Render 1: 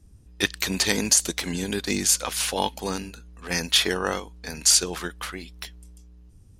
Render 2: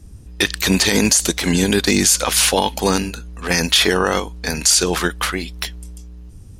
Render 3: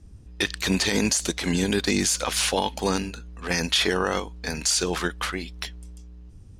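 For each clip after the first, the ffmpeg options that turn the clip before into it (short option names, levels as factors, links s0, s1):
-af "alimiter=level_in=5.62:limit=0.891:release=50:level=0:latency=1,volume=0.75"
-af "adynamicsmooth=sensitivity=5.5:basefreq=7900,volume=0.447"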